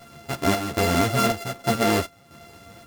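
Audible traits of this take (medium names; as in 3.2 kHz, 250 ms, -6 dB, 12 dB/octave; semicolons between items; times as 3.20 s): a buzz of ramps at a fixed pitch in blocks of 64 samples; chopped level 1.3 Hz, depth 60%, duty 70%; a shimmering, thickened sound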